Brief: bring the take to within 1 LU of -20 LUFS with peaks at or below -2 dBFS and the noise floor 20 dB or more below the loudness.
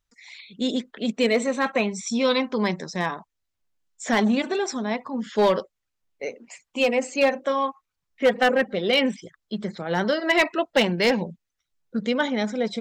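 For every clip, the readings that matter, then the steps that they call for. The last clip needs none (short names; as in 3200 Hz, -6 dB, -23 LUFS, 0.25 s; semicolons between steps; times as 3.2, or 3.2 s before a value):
clipped 0.4%; flat tops at -12.5 dBFS; loudness -23.5 LUFS; peak -12.5 dBFS; loudness target -20.0 LUFS
-> clip repair -12.5 dBFS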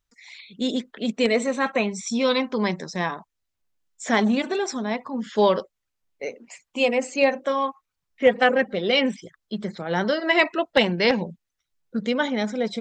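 clipped 0.0%; loudness -23.5 LUFS; peak -4.0 dBFS; loudness target -20.0 LUFS
-> gain +3.5 dB; limiter -2 dBFS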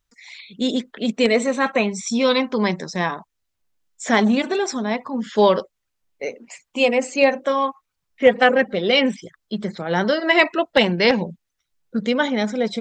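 loudness -20.0 LUFS; peak -2.0 dBFS; noise floor -77 dBFS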